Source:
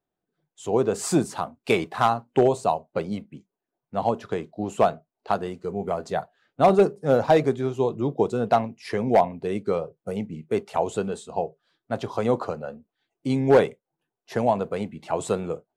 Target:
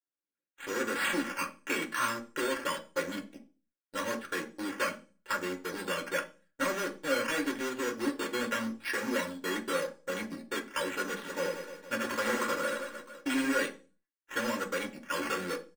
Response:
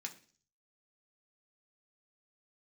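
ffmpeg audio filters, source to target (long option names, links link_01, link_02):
-filter_complex "[0:a]acrossover=split=370|950[link_01][link_02][link_03];[link_01]acompressor=threshold=-27dB:ratio=4[link_04];[link_02]acompressor=threshold=-31dB:ratio=4[link_05];[link_03]acompressor=threshold=-31dB:ratio=4[link_06];[link_04][link_05][link_06]amix=inputs=3:normalize=0,asuperstop=centerf=750:order=12:qfactor=2.7,volume=28dB,asoftclip=hard,volume=-28dB,equalizer=frequency=110:width=0.4:gain=-4.5,acrusher=samples=9:mix=1:aa=0.000001:lfo=1:lforange=5.4:lforate=0.87,aeval=exprs='0.0531*(cos(1*acos(clip(val(0)/0.0531,-1,1)))-cos(1*PI/2))+0.00299*(cos(4*acos(clip(val(0)/0.0531,-1,1)))-cos(4*PI/2))+0.00596*(cos(6*acos(clip(val(0)/0.0531,-1,1)))-cos(6*PI/2))+0.00668*(cos(7*acos(clip(val(0)/0.0531,-1,1)))-cos(7*PI/2))':channel_layout=same,equalizer=frequency=1600:width=2.5:gain=11,aecho=1:1:3.6:0.7,asplit=3[link_07][link_08][link_09];[link_07]afade=type=out:start_time=11.23:duration=0.02[link_10];[link_08]aecho=1:1:80|180|305|461.2|656.6:0.631|0.398|0.251|0.158|0.1,afade=type=in:start_time=11.23:duration=0.02,afade=type=out:start_time=13.47:duration=0.02[link_11];[link_09]afade=type=in:start_time=13.47:duration=0.02[link_12];[link_10][link_11][link_12]amix=inputs=3:normalize=0[link_13];[1:a]atrim=start_sample=2205,asetrate=57330,aresample=44100[link_14];[link_13][link_14]afir=irnorm=-1:irlink=0,volume=4.5dB"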